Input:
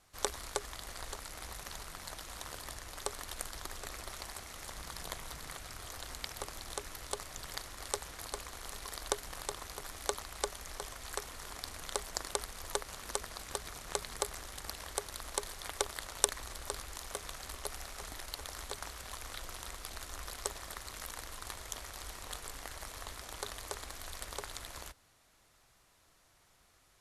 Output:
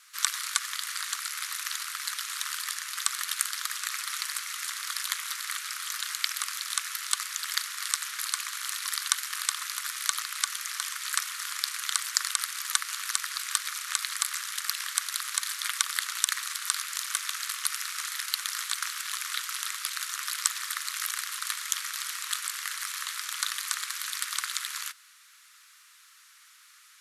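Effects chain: steep high-pass 1200 Hz 48 dB/oct; maximiser +14.5 dB; gain -1 dB

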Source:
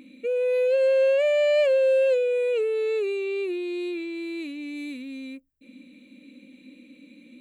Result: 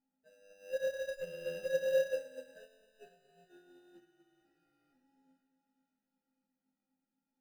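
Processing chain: sample-rate reducer 1100 Hz, jitter 0%; high shelf 3700 Hz -9 dB; resonator bank F3 minor, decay 0.29 s; split-band echo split 1300 Hz, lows 0.247 s, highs 0.501 s, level -9 dB; upward expander 2.5:1, over -47 dBFS; gain +4 dB

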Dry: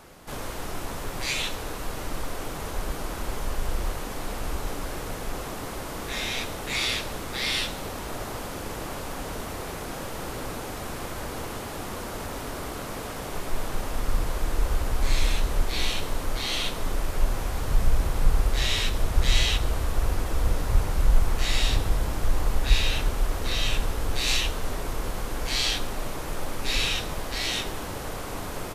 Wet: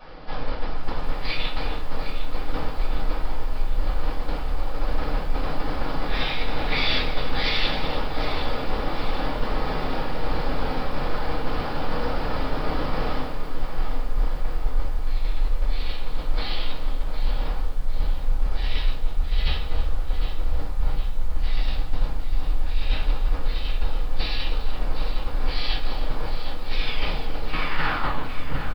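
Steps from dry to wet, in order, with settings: tape stop at the end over 2.05 s; notches 50/100/150/200/250/300 Hz; echo 0.305 s -13 dB; shoebox room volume 270 m³, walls furnished, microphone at 5.8 m; downsampling 11025 Hz; reverse; compressor 16:1, threshold -12 dBFS, peak gain reduction 23 dB; reverse; bell 95 Hz -12.5 dB 0.37 oct; lo-fi delay 0.758 s, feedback 55%, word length 7-bit, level -10 dB; gain -4 dB

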